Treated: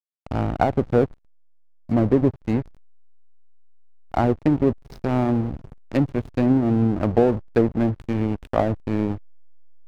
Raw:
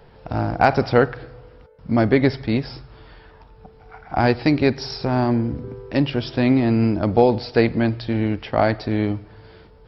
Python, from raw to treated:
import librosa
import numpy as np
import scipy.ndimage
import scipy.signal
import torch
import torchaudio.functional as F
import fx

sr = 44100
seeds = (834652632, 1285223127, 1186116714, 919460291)

y = fx.quant_float(x, sr, bits=4)
y = fx.env_lowpass_down(y, sr, base_hz=560.0, full_db=-13.0)
y = fx.backlash(y, sr, play_db=-21.0)